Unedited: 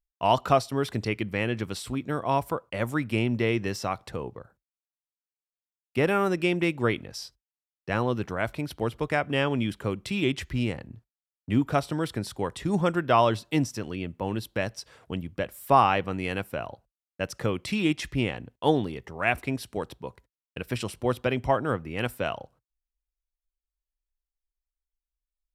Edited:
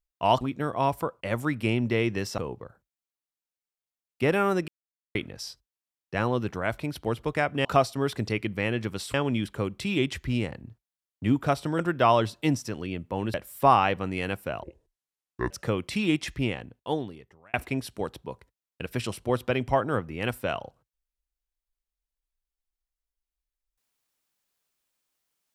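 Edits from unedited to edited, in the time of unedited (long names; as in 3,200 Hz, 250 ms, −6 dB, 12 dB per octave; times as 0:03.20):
0:00.41–0:01.90: move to 0:09.40
0:03.87–0:04.13: remove
0:06.43–0:06.90: silence
0:12.05–0:12.88: remove
0:14.43–0:15.41: remove
0:16.70–0:17.27: play speed 65%
0:18.05–0:19.30: fade out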